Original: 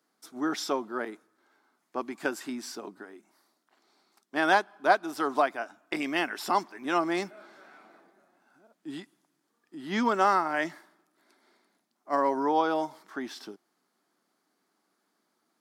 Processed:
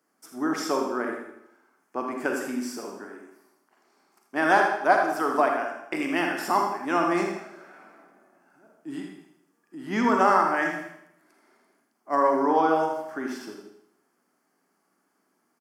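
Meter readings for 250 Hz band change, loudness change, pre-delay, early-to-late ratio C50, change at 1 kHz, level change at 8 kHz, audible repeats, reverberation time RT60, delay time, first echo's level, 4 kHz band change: +4.5 dB, +4.0 dB, 34 ms, 2.5 dB, +4.0 dB, +2.5 dB, 1, 0.75 s, 81 ms, −8.5 dB, −1.5 dB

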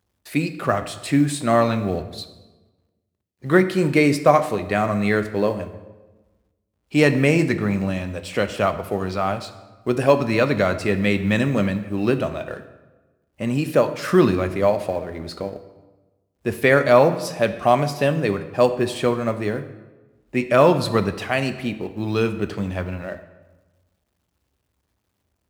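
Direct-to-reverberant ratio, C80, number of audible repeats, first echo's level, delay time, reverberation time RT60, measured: 9.5 dB, 14.0 dB, no echo audible, no echo audible, no echo audible, 1.2 s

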